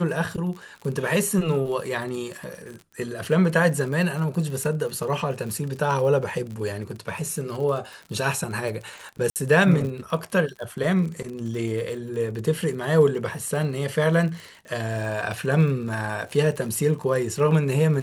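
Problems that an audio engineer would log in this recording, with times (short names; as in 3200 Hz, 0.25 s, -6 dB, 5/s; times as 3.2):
crackle 48/s -32 dBFS
9.3–9.36 gap 58 ms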